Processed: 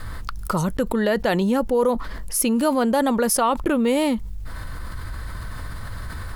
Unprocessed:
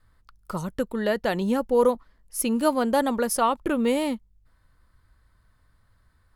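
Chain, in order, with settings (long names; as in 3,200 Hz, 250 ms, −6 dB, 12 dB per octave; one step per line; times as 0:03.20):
envelope flattener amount 70%
level −1 dB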